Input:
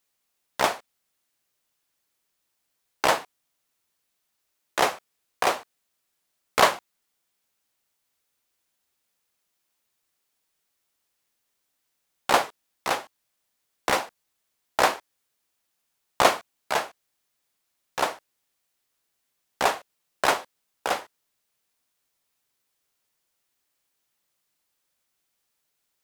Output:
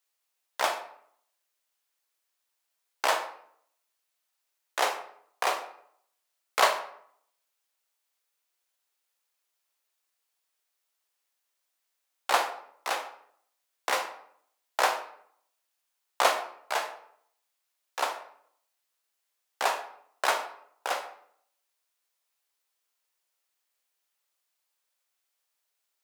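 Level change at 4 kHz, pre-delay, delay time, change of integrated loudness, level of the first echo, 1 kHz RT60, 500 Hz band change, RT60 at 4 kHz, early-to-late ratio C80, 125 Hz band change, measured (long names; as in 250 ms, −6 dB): −3.5 dB, 20 ms, no echo audible, −4.0 dB, no echo audible, 0.60 s, −5.5 dB, 0.45 s, 13.0 dB, below −20 dB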